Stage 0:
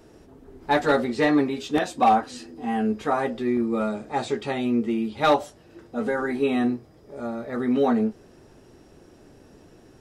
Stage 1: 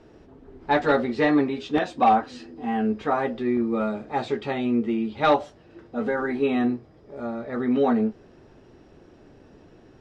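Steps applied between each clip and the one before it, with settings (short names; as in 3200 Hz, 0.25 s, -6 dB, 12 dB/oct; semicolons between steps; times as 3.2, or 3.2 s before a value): LPF 4000 Hz 12 dB/oct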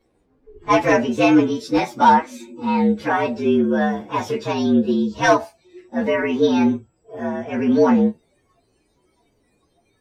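inharmonic rescaling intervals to 115%; spectral noise reduction 17 dB; gain +7 dB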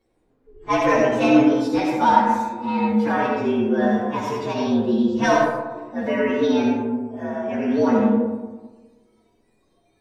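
digital reverb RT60 1.3 s, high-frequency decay 0.35×, pre-delay 30 ms, DRR -1 dB; gain -5 dB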